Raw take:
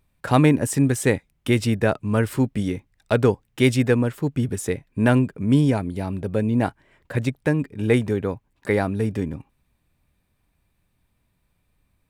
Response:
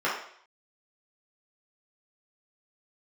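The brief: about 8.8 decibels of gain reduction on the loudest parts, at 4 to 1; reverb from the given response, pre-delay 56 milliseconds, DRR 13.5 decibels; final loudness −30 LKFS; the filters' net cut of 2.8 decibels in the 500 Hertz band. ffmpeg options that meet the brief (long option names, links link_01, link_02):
-filter_complex "[0:a]equalizer=frequency=500:width_type=o:gain=-3.5,acompressor=threshold=-24dB:ratio=4,asplit=2[link_01][link_02];[1:a]atrim=start_sample=2205,adelay=56[link_03];[link_02][link_03]afir=irnorm=-1:irlink=0,volume=-27dB[link_04];[link_01][link_04]amix=inputs=2:normalize=0,volume=-1dB"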